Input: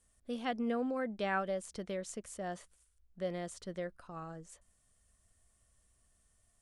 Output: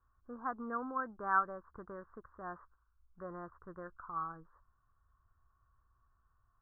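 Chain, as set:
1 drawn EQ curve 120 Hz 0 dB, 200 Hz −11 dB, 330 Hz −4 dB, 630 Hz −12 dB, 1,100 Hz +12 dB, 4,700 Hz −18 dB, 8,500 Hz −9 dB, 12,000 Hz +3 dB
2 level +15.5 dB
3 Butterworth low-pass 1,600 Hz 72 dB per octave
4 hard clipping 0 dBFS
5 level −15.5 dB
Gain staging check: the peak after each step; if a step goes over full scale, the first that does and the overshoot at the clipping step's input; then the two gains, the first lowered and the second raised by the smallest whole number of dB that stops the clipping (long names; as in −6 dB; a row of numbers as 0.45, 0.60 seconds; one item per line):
−17.0, −1.5, −2.0, −2.0, −17.5 dBFS
no step passes full scale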